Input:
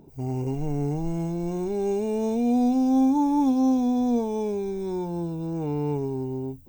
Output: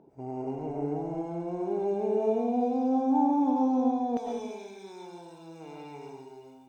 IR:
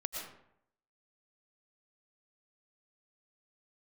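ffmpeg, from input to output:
-filter_complex "[0:a]asetnsamples=n=441:p=0,asendcmd='4.17 bandpass f 3100',bandpass=f=700:t=q:w=0.78:csg=0[s0];[1:a]atrim=start_sample=2205[s1];[s0][s1]afir=irnorm=-1:irlink=0"

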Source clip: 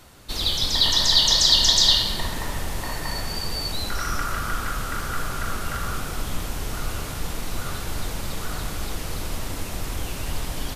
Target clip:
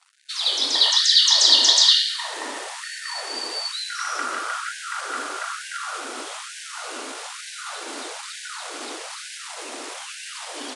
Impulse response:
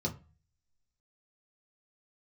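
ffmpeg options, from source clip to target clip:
-af "aeval=exprs='sgn(val(0))*max(abs(val(0))-0.00473,0)':c=same,aresample=22050,aresample=44100,afftfilt=real='re*gte(b*sr/1024,220*pow(1500/220,0.5+0.5*sin(2*PI*1.1*pts/sr)))':imag='im*gte(b*sr/1024,220*pow(1500/220,0.5+0.5*sin(2*PI*1.1*pts/sr)))':win_size=1024:overlap=0.75,volume=1.33"

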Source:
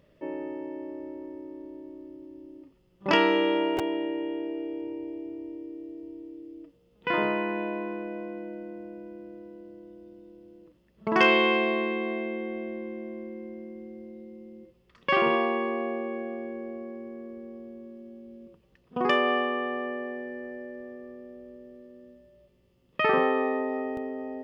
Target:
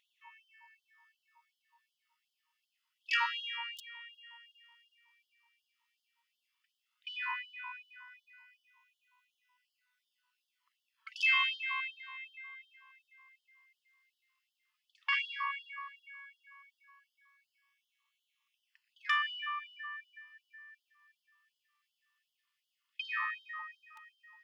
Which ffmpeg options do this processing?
-af "flanger=delay=0.3:depth=2.5:regen=-31:speed=0.11:shape=sinusoidal,afftfilt=real='re*gte(b*sr/1024,890*pow(2900/890,0.5+0.5*sin(2*PI*2.7*pts/sr)))':imag='im*gte(b*sr/1024,890*pow(2900/890,0.5+0.5*sin(2*PI*2.7*pts/sr)))':win_size=1024:overlap=0.75"

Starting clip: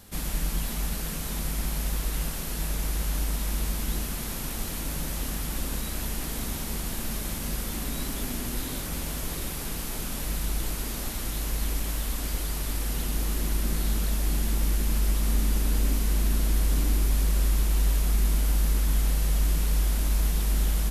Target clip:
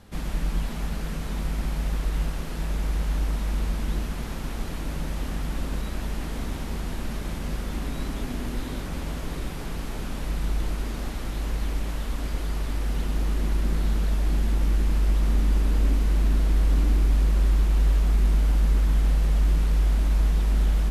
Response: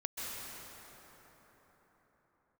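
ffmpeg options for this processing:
-filter_complex "[0:a]aemphasis=mode=reproduction:type=75fm,asplit=2[s0][s1];[1:a]atrim=start_sample=2205[s2];[s1][s2]afir=irnorm=-1:irlink=0,volume=0.211[s3];[s0][s3]amix=inputs=2:normalize=0"

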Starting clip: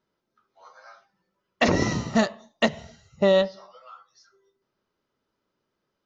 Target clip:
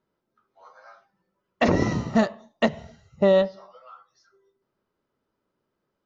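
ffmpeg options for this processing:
-af "highshelf=f=2400:g=-10,volume=1.19"

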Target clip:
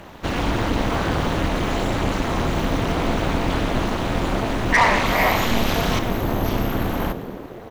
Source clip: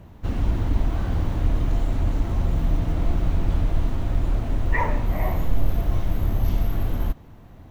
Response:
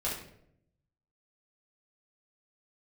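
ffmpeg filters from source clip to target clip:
-filter_complex "[0:a]asetnsamples=n=441:p=0,asendcmd='4.81 equalizer g 10;5.99 equalizer g -3',equalizer=f=4600:t=o:w=2.8:g=2,asplit=7[s0][s1][s2][s3][s4][s5][s6];[s1]adelay=112,afreqshift=81,volume=0.15[s7];[s2]adelay=224,afreqshift=162,volume=0.0944[s8];[s3]adelay=336,afreqshift=243,volume=0.0596[s9];[s4]adelay=448,afreqshift=324,volume=0.0376[s10];[s5]adelay=560,afreqshift=405,volume=0.0234[s11];[s6]adelay=672,afreqshift=486,volume=0.0148[s12];[s0][s7][s8][s9][s10][s11][s12]amix=inputs=7:normalize=0,asplit=2[s13][s14];[s14]highpass=f=720:p=1,volume=11.2,asoftclip=type=tanh:threshold=0.447[s15];[s13][s15]amix=inputs=2:normalize=0,lowpass=f=6900:p=1,volume=0.501,tremolo=f=230:d=0.889,volume=1.5"

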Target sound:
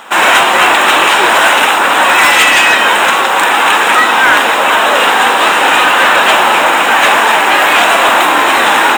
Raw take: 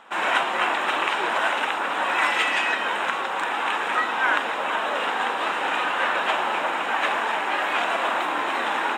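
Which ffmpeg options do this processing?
-af "aemphasis=mode=production:type=50fm,apsyclip=7.94,volume=0.841"

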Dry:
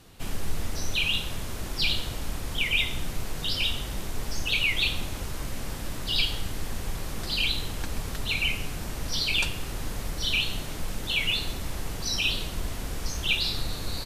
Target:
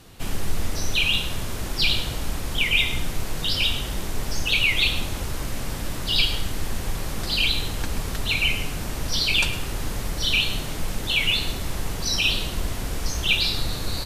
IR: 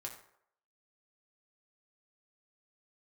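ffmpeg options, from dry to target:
-filter_complex "[0:a]asplit=2[s0][s1];[1:a]atrim=start_sample=2205,adelay=105[s2];[s1][s2]afir=irnorm=-1:irlink=0,volume=0.316[s3];[s0][s3]amix=inputs=2:normalize=0,volume=1.68"

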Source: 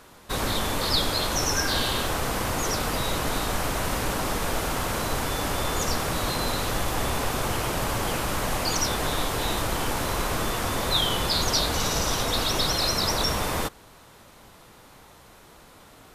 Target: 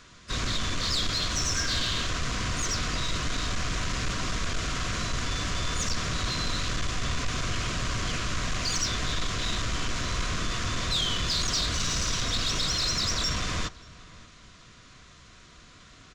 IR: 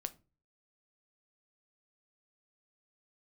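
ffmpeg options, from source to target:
-filter_complex "[0:a]equalizer=f=540:t=o:w=2:g=-12,aresample=16000,asoftclip=type=hard:threshold=0.0562,aresample=44100,asplit=2[s0][s1];[s1]asetrate=58866,aresample=44100,atempo=0.749154,volume=0.224[s2];[s0][s2]amix=inputs=2:normalize=0,asplit=2[s3][s4];[s4]asoftclip=type=tanh:threshold=0.02,volume=0.355[s5];[s3][s5]amix=inputs=2:normalize=0,asuperstop=centerf=850:order=12:qfactor=5.1,asplit=2[s6][s7];[s7]adelay=583.1,volume=0.1,highshelf=f=4000:g=-13.1[s8];[s6][s8]amix=inputs=2:normalize=0"

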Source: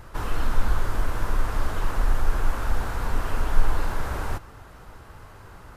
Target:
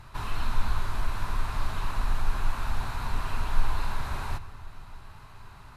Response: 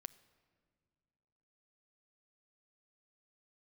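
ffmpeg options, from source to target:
-filter_complex "[0:a]equalizer=f=125:t=o:w=0.33:g=7,equalizer=f=315:t=o:w=0.33:g=-6,equalizer=f=500:t=o:w=0.33:g=-11,equalizer=f=1000:t=o:w=0.33:g=5,equalizer=f=2500:t=o:w=0.33:g=6,equalizer=f=4000:t=o:w=0.33:g=9[s0];[1:a]atrim=start_sample=2205,asetrate=24696,aresample=44100[s1];[s0][s1]afir=irnorm=-1:irlink=0,volume=0.75"

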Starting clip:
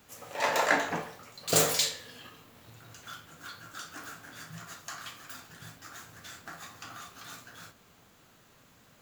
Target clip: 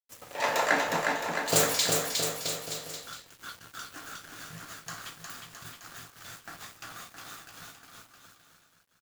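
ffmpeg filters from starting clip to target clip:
-af "aeval=exprs='val(0)*gte(abs(val(0)),0.00562)':c=same,aecho=1:1:360|666|926.1|1147|1335:0.631|0.398|0.251|0.158|0.1"

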